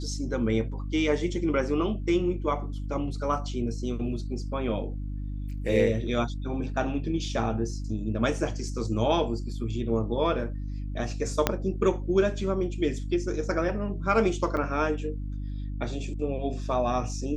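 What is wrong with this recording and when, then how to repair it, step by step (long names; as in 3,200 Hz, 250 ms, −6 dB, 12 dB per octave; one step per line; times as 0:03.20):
mains hum 50 Hz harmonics 6 −33 dBFS
0:11.47: click −6 dBFS
0:14.57: drop-out 3.7 ms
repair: click removal
hum removal 50 Hz, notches 6
repair the gap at 0:14.57, 3.7 ms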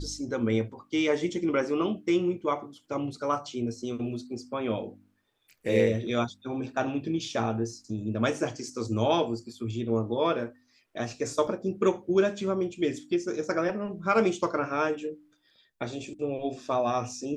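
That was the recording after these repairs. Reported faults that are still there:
0:11.47: click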